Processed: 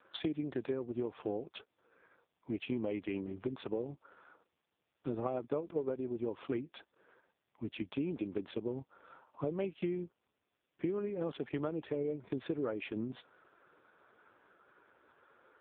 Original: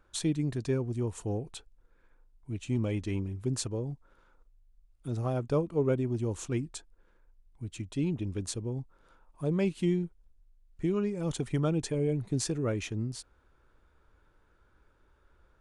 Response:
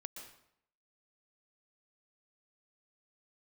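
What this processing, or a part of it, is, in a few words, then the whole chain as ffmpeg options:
voicemail: -af "highpass=320,lowpass=3200,acompressor=threshold=-42dB:ratio=8,volume=10dB" -ar 8000 -c:a libopencore_amrnb -b:a 4750

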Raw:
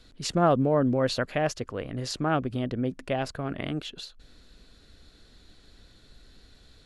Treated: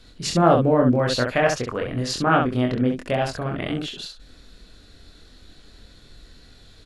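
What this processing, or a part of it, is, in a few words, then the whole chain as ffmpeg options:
slapback doubling: -filter_complex "[0:a]asplit=3[link_01][link_02][link_03];[link_02]adelay=24,volume=-3dB[link_04];[link_03]adelay=67,volume=-5dB[link_05];[link_01][link_04][link_05]amix=inputs=3:normalize=0,asplit=3[link_06][link_07][link_08];[link_06]afade=type=out:start_time=1.32:duration=0.02[link_09];[link_07]adynamicequalizer=threshold=0.0141:dfrequency=1400:dqfactor=0.75:tfrequency=1400:tqfactor=0.75:attack=5:release=100:ratio=0.375:range=2.5:mode=boostabove:tftype=bell,afade=type=in:start_time=1.32:duration=0.02,afade=type=out:start_time=2.97:duration=0.02[link_10];[link_08]afade=type=in:start_time=2.97:duration=0.02[link_11];[link_09][link_10][link_11]amix=inputs=3:normalize=0,volume=3.5dB"

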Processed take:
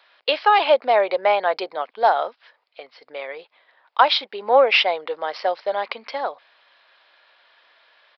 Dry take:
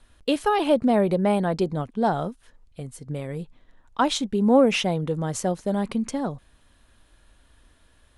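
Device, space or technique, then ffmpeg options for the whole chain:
musical greeting card: -af "aresample=11025,aresample=44100,highpass=frequency=580:width=0.5412,highpass=frequency=580:width=1.3066,equalizer=frequency=2200:width_type=o:width=0.34:gain=5,volume=8dB"

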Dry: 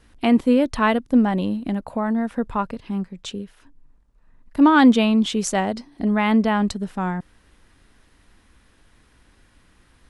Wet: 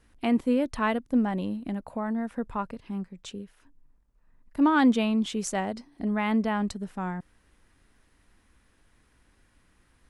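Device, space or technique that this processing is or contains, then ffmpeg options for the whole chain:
exciter from parts: -filter_complex "[0:a]asplit=2[link_01][link_02];[link_02]highpass=3000,asoftclip=type=tanh:threshold=-20.5dB,highpass=frequency=2200:width=0.5412,highpass=frequency=2200:width=1.3066,volume=-11dB[link_03];[link_01][link_03]amix=inputs=2:normalize=0,volume=-7.5dB"

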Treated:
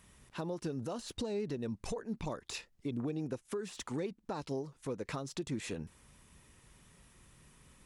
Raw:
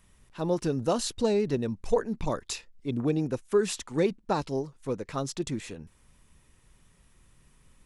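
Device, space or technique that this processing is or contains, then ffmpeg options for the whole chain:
podcast mastering chain: -af "highpass=frequency=72:poles=1,deesser=0.85,acompressor=threshold=-34dB:ratio=4,alimiter=level_in=7dB:limit=-24dB:level=0:latency=1:release=271,volume=-7dB,volume=3dB" -ar 48000 -c:a libmp3lame -b:a 96k

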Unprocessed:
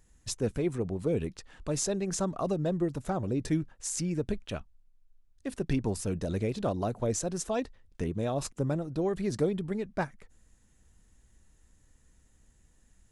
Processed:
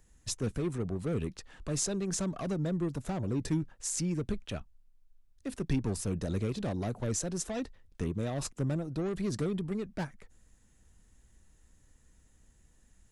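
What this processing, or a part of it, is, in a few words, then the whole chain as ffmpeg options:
one-band saturation: -filter_complex "[0:a]acrossover=split=280|3200[link_01][link_02][link_03];[link_02]asoftclip=type=tanh:threshold=-35.5dB[link_04];[link_01][link_04][link_03]amix=inputs=3:normalize=0"

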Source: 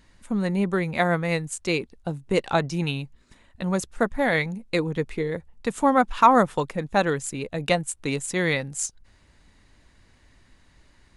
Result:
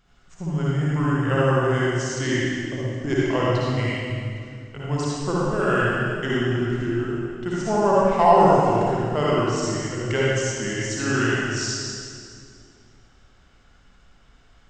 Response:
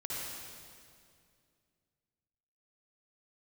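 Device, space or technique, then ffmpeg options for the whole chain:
slowed and reverbed: -filter_complex "[0:a]equalizer=frequency=140:width=0.82:gain=-3,asetrate=33516,aresample=44100[link_01];[1:a]atrim=start_sample=2205[link_02];[link_01][link_02]afir=irnorm=-1:irlink=0"

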